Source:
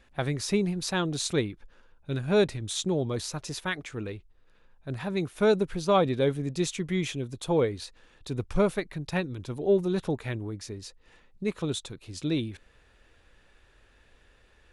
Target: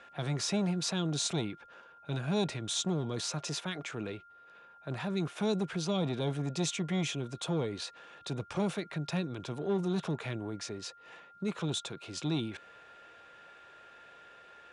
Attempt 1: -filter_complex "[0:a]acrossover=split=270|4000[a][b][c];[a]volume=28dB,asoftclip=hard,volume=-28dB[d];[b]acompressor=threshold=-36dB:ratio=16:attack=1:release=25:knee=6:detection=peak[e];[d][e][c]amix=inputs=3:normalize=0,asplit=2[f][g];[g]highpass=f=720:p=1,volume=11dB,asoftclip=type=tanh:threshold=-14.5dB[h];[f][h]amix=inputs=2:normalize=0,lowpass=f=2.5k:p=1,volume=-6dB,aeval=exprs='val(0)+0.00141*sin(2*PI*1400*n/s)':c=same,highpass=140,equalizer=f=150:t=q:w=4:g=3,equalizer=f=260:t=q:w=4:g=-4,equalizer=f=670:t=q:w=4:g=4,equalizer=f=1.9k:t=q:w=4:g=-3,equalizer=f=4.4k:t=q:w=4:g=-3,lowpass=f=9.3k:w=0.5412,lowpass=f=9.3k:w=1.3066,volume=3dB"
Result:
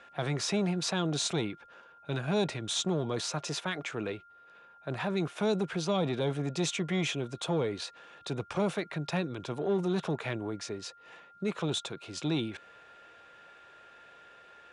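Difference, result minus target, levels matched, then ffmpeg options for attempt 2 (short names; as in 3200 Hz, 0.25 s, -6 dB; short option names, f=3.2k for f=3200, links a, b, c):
compressor: peak gain reduction -7.5 dB
-filter_complex "[0:a]acrossover=split=270|4000[a][b][c];[a]volume=28dB,asoftclip=hard,volume=-28dB[d];[b]acompressor=threshold=-44dB:ratio=16:attack=1:release=25:knee=6:detection=peak[e];[d][e][c]amix=inputs=3:normalize=0,asplit=2[f][g];[g]highpass=f=720:p=1,volume=11dB,asoftclip=type=tanh:threshold=-14.5dB[h];[f][h]amix=inputs=2:normalize=0,lowpass=f=2.5k:p=1,volume=-6dB,aeval=exprs='val(0)+0.00141*sin(2*PI*1400*n/s)':c=same,highpass=140,equalizer=f=150:t=q:w=4:g=3,equalizer=f=260:t=q:w=4:g=-4,equalizer=f=670:t=q:w=4:g=4,equalizer=f=1.9k:t=q:w=4:g=-3,equalizer=f=4.4k:t=q:w=4:g=-3,lowpass=f=9.3k:w=0.5412,lowpass=f=9.3k:w=1.3066,volume=3dB"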